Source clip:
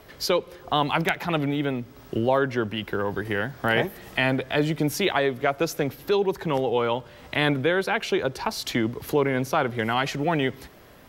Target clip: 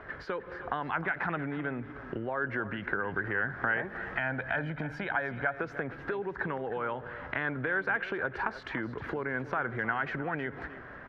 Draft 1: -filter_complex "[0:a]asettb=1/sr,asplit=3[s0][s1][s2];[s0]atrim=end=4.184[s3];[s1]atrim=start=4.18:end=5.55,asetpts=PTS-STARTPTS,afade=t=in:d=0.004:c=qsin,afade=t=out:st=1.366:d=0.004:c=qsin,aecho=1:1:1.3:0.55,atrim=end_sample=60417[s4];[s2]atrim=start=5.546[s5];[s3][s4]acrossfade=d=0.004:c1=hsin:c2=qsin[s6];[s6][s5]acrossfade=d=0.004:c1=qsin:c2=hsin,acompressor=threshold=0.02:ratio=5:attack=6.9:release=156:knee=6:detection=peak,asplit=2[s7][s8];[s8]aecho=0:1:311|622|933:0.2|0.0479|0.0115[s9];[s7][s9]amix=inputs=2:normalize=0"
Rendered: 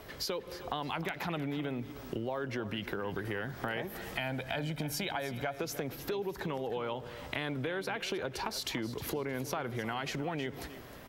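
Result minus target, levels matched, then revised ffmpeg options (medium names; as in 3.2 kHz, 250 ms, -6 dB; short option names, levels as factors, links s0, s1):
2 kHz band -6.0 dB
-filter_complex "[0:a]asettb=1/sr,asplit=3[s0][s1][s2];[s0]atrim=end=4.184[s3];[s1]atrim=start=4.18:end=5.55,asetpts=PTS-STARTPTS,afade=t=in:d=0.004:c=qsin,afade=t=out:st=1.366:d=0.004:c=qsin,aecho=1:1:1.3:0.55,atrim=end_sample=60417[s4];[s2]atrim=start=5.546[s5];[s3][s4]acrossfade=d=0.004:c1=hsin:c2=qsin[s6];[s6][s5]acrossfade=d=0.004:c1=qsin:c2=hsin,acompressor=threshold=0.02:ratio=5:attack=6.9:release=156:knee=6:detection=peak,lowpass=f=1600:t=q:w=4.1,asplit=2[s7][s8];[s8]aecho=0:1:311|622|933:0.2|0.0479|0.0115[s9];[s7][s9]amix=inputs=2:normalize=0"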